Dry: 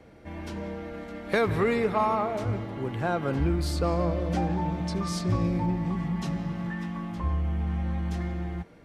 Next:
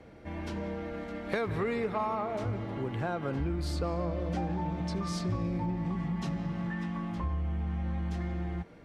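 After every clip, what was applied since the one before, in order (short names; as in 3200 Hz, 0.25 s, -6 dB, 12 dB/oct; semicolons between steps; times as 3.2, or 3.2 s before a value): high shelf 9500 Hz -9.5 dB; compressor 2.5:1, threshold -31 dBFS, peak gain reduction 8 dB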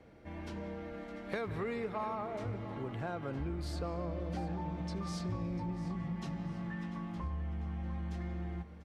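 feedback echo 0.695 s, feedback 41%, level -15 dB; gain -6 dB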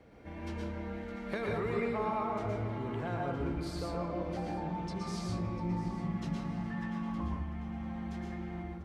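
plate-style reverb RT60 0.51 s, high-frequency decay 0.55×, pre-delay 0.105 s, DRR -1.5 dB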